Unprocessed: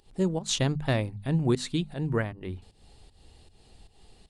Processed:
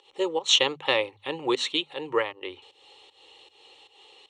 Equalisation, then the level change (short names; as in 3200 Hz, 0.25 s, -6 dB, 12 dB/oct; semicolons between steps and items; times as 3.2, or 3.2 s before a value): speaker cabinet 470–7100 Hz, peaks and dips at 550 Hz +6 dB, 800 Hz +4 dB, 1400 Hz +9 dB, 3000 Hz +8 dB, 5500 Hz +8 dB; bell 4300 Hz +12 dB 0.45 oct; fixed phaser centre 1000 Hz, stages 8; +7.0 dB